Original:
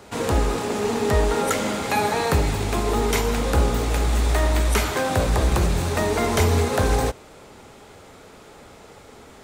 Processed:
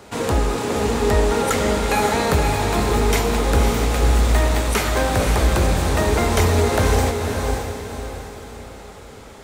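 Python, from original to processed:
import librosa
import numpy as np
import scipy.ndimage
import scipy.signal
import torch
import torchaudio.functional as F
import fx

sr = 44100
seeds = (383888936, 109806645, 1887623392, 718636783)

p1 = np.clip(x, -10.0 ** (-18.5 / 20.0), 10.0 ** (-18.5 / 20.0))
p2 = x + (p1 * librosa.db_to_amplitude(-12.0))
y = fx.echo_diffused(p2, sr, ms=537, feedback_pct=43, wet_db=-4.5)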